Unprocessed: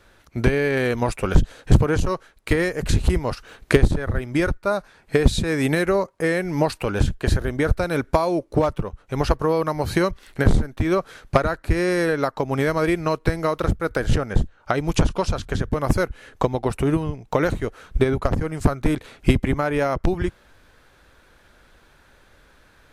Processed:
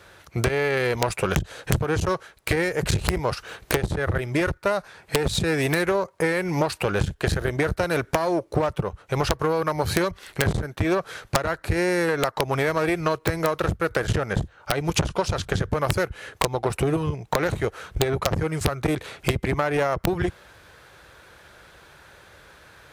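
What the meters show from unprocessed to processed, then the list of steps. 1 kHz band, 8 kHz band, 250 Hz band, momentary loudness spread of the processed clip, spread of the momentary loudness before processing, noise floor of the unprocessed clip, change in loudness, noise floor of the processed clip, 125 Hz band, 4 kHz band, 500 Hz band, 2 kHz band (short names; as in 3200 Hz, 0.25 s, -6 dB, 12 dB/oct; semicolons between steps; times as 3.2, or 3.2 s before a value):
-0.5 dB, +3.5 dB, -4.0 dB, 5 LU, 6 LU, -56 dBFS, -2.0 dB, -54 dBFS, -3.5 dB, +2.5 dB, -2.0 dB, +0.5 dB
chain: one diode to ground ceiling -22.5 dBFS; HPF 76 Hz 12 dB/oct; bell 250 Hz -10.5 dB 0.46 oct; compressor 6:1, threshold -25 dBFS, peak gain reduction 11.5 dB; wrapped overs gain 14.5 dB; gain +6.5 dB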